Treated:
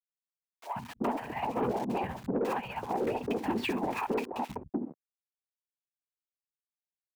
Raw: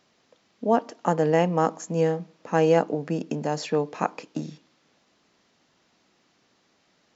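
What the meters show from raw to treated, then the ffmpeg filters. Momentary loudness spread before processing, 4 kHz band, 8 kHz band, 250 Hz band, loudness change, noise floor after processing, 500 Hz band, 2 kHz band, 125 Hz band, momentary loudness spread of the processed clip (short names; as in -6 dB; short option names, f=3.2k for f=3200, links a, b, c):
12 LU, -4.0 dB, n/a, -6.0 dB, -8.5 dB, under -85 dBFS, -10.0 dB, -4.5 dB, -13.0 dB, 8 LU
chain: -filter_complex "[0:a]acontrast=49,equalizer=f=910:w=2.7:g=11.5,alimiter=limit=-7.5dB:level=0:latency=1:release=133,bandreject=f=540:w=17,afftfilt=real='hypot(re,im)*cos(2*PI*random(0))':imag='hypot(re,im)*sin(2*PI*random(1))':win_size=512:overlap=0.75,highpass=100,equalizer=f=100:t=q:w=4:g=-6,equalizer=f=160:t=q:w=4:g=-8,equalizer=f=240:t=q:w=4:g=6,equalizer=f=560:t=q:w=4:g=-5,equalizer=f=1.3k:t=q:w=4:g=-4,equalizer=f=2.4k:t=q:w=4:g=7,lowpass=f=3.5k:w=0.5412,lowpass=f=3.5k:w=1.3066,anlmdn=0.00398,aeval=exprs='val(0)*gte(abs(val(0)),0.00668)':c=same,tremolo=f=15:d=0.58,acompressor=threshold=-31dB:ratio=12,acrossover=split=150|860[a][b][c];[a]adelay=130[d];[b]adelay=380[e];[d][e][c]amix=inputs=3:normalize=0,asoftclip=type=tanh:threshold=-30dB,volume=7.5dB"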